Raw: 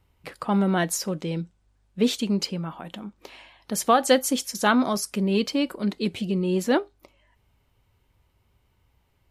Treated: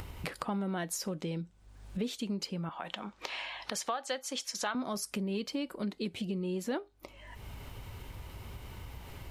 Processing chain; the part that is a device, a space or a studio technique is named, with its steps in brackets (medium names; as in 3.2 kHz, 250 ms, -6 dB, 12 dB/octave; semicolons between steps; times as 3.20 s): 2.69–4.75 s: three-band isolator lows -14 dB, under 550 Hz, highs -16 dB, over 7.5 kHz; upward and downward compression (upward compressor, threshold -27 dBFS; compression 4:1, threshold -34 dBFS, peak gain reduction 16 dB)